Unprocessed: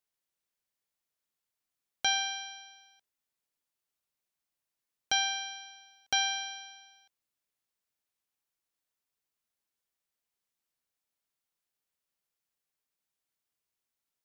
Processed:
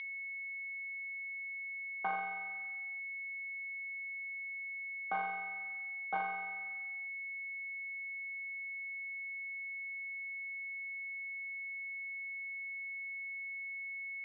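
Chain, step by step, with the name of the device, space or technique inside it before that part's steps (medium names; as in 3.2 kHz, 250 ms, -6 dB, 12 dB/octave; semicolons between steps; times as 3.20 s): toy sound module (decimation joined by straight lines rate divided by 8×; class-D stage that switches slowly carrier 2.2 kHz; cabinet simulation 650–4100 Hz, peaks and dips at 1 kHz +7 dB, 2.3 kHz -6 dB, 3.4 kHz +6 dB); trim +1.5 dB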